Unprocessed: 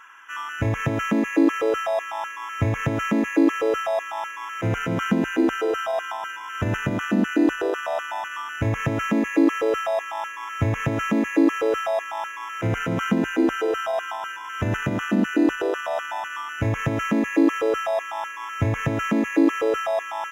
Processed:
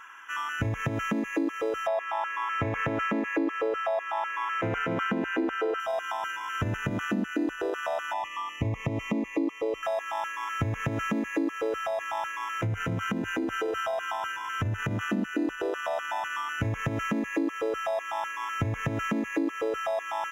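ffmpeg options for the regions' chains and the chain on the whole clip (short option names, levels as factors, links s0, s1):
-filter_complex "[0:a]asettb=1/sr,asplit=3[s0][s1][s2];[s0]atrim=end=1.874[s3];[s1]atrim=start=1.87:end=5.8,asetpts=PTS-STARTPTS,afade=t=in:d=0.004:c=qsin,afade=t=out:st=3.926:d=0.004:c=qsin,bass=f=250:g=-11,treble=f=4000:g=-13,acontrast=30[s4];[s2]atrim=start=5.796[s5];[s3][s4]acrossfade=d=0.004:c1=hsin:c2=qsin[s6];[s6][s5]acrossfade=d=0.004:c1=qsin:c2=hsin,asettb=1/sr,asplit=3[s7][s8][s9];[s7]atrim=end=8.134[s10];[s8]atrim=start=8.13:end=9.83,asetpts=PTS-STARTPTS,afade=t=in:d=0.004:c=qsin,afade=t=out:st=1.696:d=0.004:c=qsin,asuperstop=centerf=1500:order=8:qfactor=2.5,aemphasis=mode=reproduction:type=cd[s11];[s9]atrim=start=9.826[s12];[s10][s11]acrossfade=d=0.004:c1=hsin:c2=qsin[s13];[s13][s12]acrossfade=d=0.004:c1=qsin:c2=hsin,asettb=1/sr,asplit=3[s14][s15][s16];[s14]atrim=end=11.754[s17];[s15]atrim=start=11.75:end=15.01,asetpts=PTS-STARTPTS,afade=t=in:d=0.004:c=qsin,afade=t=out:st=3.256:d=0.004:c=qsin,equalizer=f=100:w=2:g=8.5,acompressor=threshold=0.0708:ratio=3:attack=3.2:release=140:knee=1:detection=peak[s18];[s16]atrim=start=15.006[s19];[s17][s18]acrossfade=d=0.004:c1=hsin:c2=qsin[s20];[s20][s19]acrossfade=d=0.004:c1=qsin:c2=hsin,lowshelf=f=190:g=4,acompressor=threshold=0.0447:ratio=4"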